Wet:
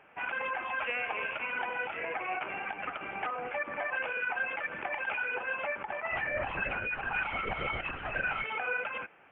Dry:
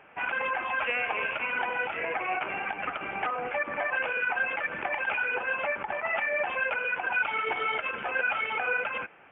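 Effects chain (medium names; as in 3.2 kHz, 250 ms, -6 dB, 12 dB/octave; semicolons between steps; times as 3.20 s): 6.11–8.44 s: LPC vocoder at 8 kHz whisper; trim -4.5 dB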